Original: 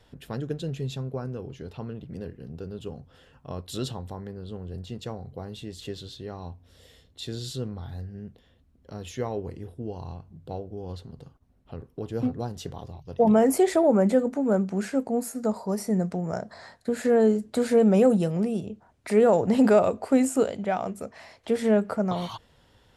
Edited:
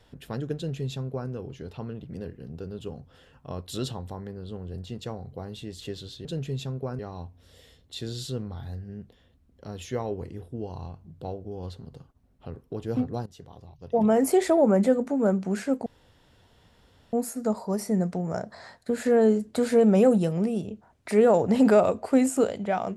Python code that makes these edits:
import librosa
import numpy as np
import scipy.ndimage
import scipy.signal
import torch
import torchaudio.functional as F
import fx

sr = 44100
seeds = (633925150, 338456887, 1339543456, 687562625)

y = fx.edit(x, sr, fx.duplicate(start_s=0.56, length_s=0.74, to_s=6.25),
    fx.fade_in_from(start_s=12.52, length_s=1.16, floor_db=-14.5),
    fx.insert_room_tone(at_s=15.12, length_s=1.27), tone=tone)